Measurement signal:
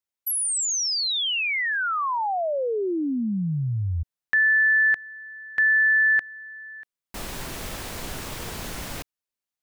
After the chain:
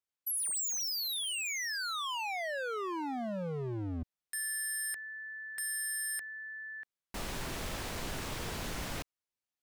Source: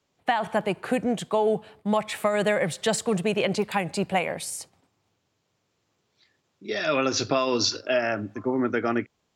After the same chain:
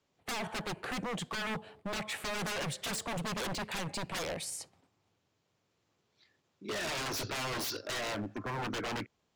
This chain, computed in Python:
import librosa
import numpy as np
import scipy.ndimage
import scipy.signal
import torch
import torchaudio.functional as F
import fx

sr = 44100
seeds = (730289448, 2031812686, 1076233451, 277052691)

y = fx.high_shelf(x, sr, hz=9300.0, db=-7.0)
y = 10.0 ** (-27.5 / 20.0) * (np.abs((y / 10.0 ** (-27.5 / 20.0) + 3.0) % 4.0 - 2.0) - 1.0)
y = y * 10.0 ** (-3.5 / 20.0)